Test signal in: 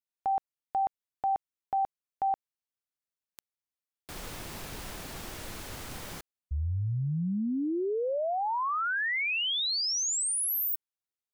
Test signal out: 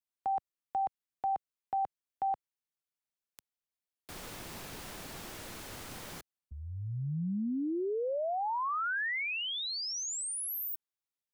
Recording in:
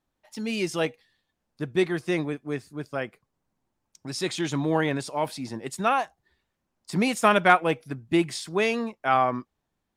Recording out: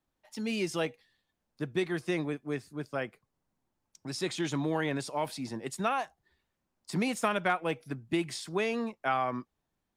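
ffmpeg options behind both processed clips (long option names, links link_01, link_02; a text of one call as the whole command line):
ffmpeg -i in.wav -filter_complex "[0:a]acrossover=split=110|1700[link_01][link_02][link_03];[link_01]acompressor=threshold=-50dB:ratio=4[link_04];[link_02]acompressor=threshold=-24dB:ratio=4[link_05];[link_03]acompressor=threshold=-33dB:ratio=4[link_06];[link_04][link_05][link_06]amix=inputs=3:normalize=0,volume=-3dB" out.wav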